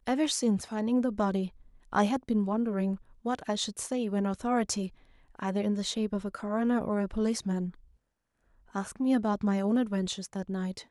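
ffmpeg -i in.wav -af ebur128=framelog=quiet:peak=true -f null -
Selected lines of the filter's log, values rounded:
Integrated loudness:
  I:         -30.5 LUFS
  Threshold: -40.7 LUFS
Loudness range:
  LRA:         1.9 LU
  Threshold: -51.3 LUFS
  LRA low:   -32.0 LUFS
  LRA high:  -30.1 LUFS
True peak:
  Peak:      -11.5 dBFS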